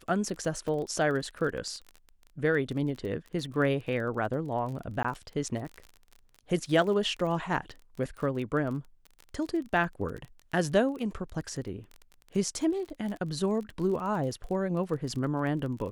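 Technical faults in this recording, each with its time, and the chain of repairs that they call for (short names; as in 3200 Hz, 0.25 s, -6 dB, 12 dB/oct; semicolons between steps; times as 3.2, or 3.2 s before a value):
crackle 29/s -36 dBFS
0.68 gap 3.3 ms
5.03–5.04 gap 15 ms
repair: de-click; interpolate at 0.68, 3.3 ms; interpolate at 5.03, 15 ms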